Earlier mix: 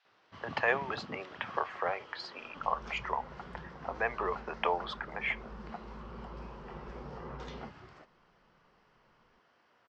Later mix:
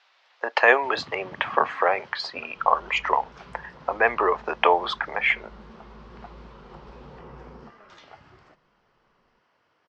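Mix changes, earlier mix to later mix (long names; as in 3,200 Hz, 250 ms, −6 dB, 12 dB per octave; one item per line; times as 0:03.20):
speech +12.0 dB
first sound: entry +0.50 s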